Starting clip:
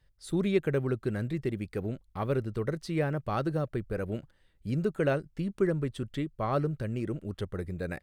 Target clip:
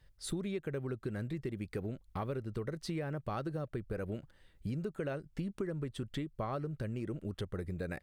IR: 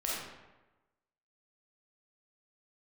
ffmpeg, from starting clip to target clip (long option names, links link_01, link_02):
-filter_complex "[0:a]asplit=2[link_01][link_02];[link_02]alimiter=limit=-21.5dB:level=0:latency=1:release=123,volume=-1dB[link_03];[link_01][link_03]amix=inputs=2:normalize=0,acompressor=threshold=-33dB:ratio=6,volume=-2dB"